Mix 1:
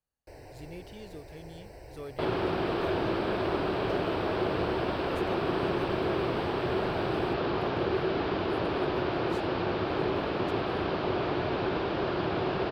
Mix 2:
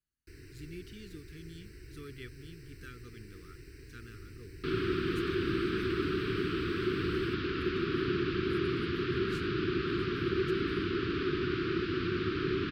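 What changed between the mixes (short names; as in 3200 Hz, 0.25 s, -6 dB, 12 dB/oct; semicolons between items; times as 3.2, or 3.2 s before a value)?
second sound: entry +2.45 s; master: add elliptic band-stop 380–1300 Hz, stop band 60 dB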